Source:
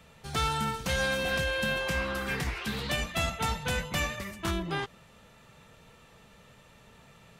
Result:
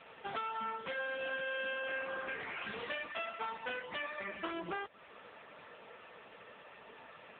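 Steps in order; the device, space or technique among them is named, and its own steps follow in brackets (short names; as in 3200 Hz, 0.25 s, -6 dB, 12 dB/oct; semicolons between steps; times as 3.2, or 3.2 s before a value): 2.23–3.59 HPF 100 Hz 12 dB/oct; voicemail (BPF 370–3100 Hz; compressor 12:1, threshold -43 dBFS, peak gain reduction 16.5 dB; gain +8.5 dB; AMR-NB 6.7 kbps 8000 Hz)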